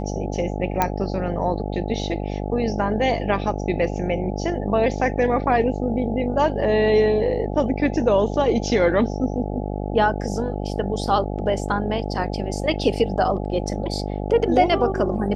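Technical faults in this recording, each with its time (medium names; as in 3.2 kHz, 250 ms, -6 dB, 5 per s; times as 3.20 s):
buzz 50 Hz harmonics 17 -27 dBFS
0.82 s: pop -5 dBFS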